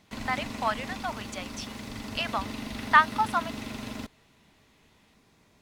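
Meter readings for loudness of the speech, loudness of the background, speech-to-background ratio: -28.0 LUFS, -38.0 LUFS, 10.0 dB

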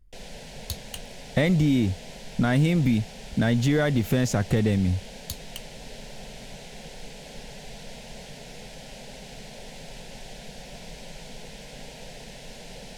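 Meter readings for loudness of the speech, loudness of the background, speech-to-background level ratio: -24.0 LUFS, -42.0 LUFS, 18.0 dB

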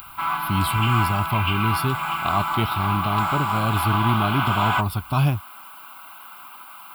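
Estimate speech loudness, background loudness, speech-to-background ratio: -24.5 LUFS, -24.0 LUFS, -0.5 dB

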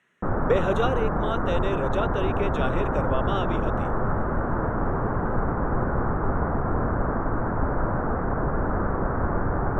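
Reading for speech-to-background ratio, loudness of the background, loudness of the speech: -2.5 dB, -26.5 LUFS, -29.0 LUFS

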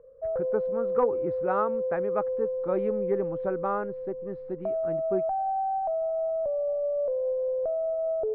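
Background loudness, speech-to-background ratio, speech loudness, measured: -30.0 LUFS, -2.0 dB, -32.0 LUFS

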